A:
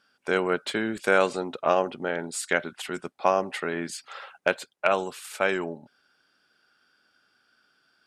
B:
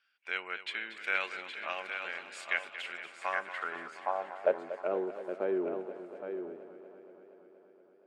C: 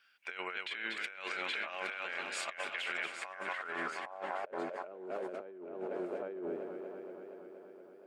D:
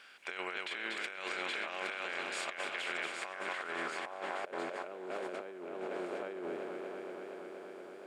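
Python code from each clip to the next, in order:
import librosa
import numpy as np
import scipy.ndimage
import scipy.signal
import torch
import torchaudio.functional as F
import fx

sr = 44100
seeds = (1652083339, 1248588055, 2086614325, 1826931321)

y1 = x + 10.0 ** (-7.5 / 20.0) * np.pad(x, (int(816 * sr / 1000.0), 0))[:len(x)]
y1 = fx.filter_sweep_bandpass(y1, sr, from_hz=2400.0, to_hz=380.0, start_s=3.0, end_s=4.93, q=2.7)
y1 = fx.echo_warbled(y1, sr, ms=236, feedback_pct=75, rate_hz=2.8, cents=72, wet_db=-13)
y2 = fx.over_compress(y1, sr, threshold_db=-43.0, ratio=-1.0)
y2 = F.gain(torch.from_numpy(y2), 1.5).numpy()
y3 = fx.bin_compress(y2, sr, power=0.6)
y3 = F.gain(torch.from_numpy(y3), -3.5).numpy()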